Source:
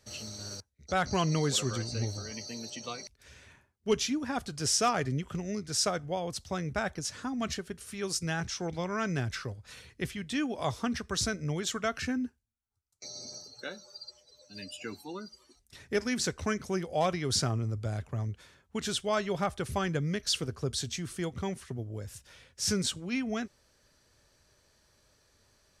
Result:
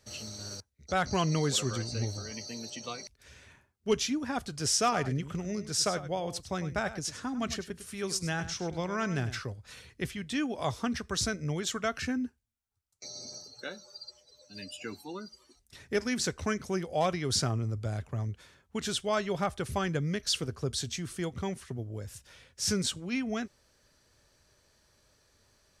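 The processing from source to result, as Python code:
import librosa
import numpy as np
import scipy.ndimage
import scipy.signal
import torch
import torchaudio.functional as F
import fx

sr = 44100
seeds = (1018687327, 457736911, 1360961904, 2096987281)

y = fx.echo_single(x, sr, ms=101, db=-13.0, at=(4.82, 9.43))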